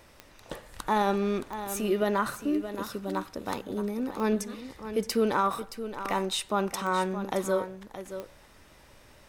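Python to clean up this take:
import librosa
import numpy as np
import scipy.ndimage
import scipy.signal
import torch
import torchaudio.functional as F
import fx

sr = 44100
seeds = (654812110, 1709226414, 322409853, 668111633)

y = fx.fix_declick_ar(x, sr, threshold=10.0)
y = fx.fix_echo_inverse(y, sr, delay_ms=622, level_db=-11.0)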